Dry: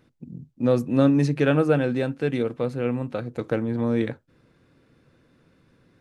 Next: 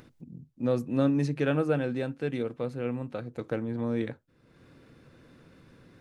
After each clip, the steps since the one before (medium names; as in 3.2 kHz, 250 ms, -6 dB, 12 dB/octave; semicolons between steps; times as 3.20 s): upward compressor, threshold -37 dBFS; trim -6.5 dB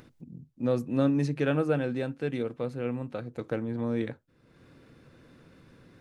no audible change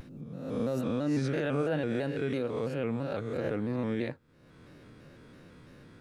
reverse spectral sustain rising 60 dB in 0.87 s; peak limiter -22 dBFS, peak gain reduction 9.5 dB; vibrato with a chosen wave square 3 Hz, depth 100 cents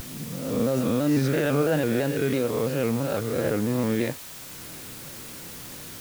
word length cut 8-bit, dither triangular; trim +7 dB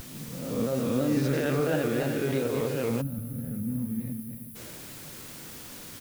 backward echo that repeats 145 ms, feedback 48%, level -5 dB; delay 370 ms -13 dB; time-frequency box 3.01–4.56 s, 290–9400 Hz -21 dB; trim -5 dB